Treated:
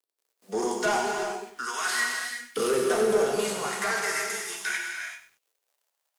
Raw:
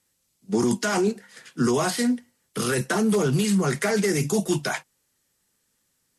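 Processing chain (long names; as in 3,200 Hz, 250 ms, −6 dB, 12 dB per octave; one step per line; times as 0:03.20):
harmonic and percussive parts rebalanced percussive −11 dB
in parallel at −2 dB: downward compressor, threshold −32 dBFS, peak gain reduction 13 dB
0:01.11–0:01.59: on the sum: formant filter i
bit reduction 10 bits
auto-filter high-pass saw up 0.39 Hz 370–2,600 Hz
soft clipping −20.5 dBFS, distortion −13 dB
reverb whose tail is shaped and stops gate 410 ms flat, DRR 1 dB
feedback echo at a low word length 96 ms, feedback 35%, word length 9 bits, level −11 dB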